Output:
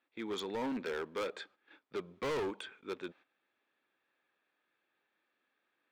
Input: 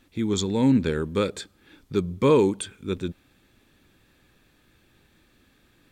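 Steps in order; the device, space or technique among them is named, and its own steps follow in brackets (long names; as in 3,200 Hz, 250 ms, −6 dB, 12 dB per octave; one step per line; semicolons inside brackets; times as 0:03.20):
walkie-talkie (band-pass filter 600–2,400 Hz; hard clipping −31.5 dBFS, distortion −5 dB; noise gate −57 dBFS, range −12 dB)
level −1.5 dB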